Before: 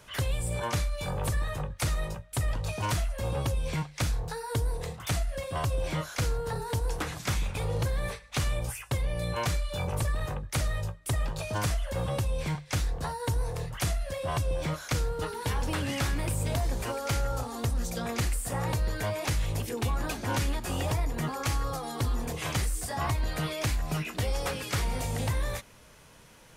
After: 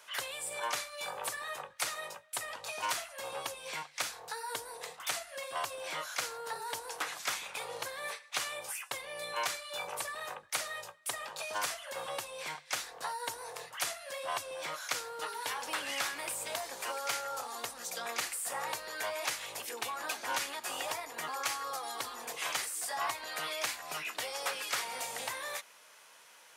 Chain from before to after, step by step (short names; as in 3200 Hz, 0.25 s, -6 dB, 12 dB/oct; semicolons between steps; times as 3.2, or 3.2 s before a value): HPF 780 Hz 12 dB/oct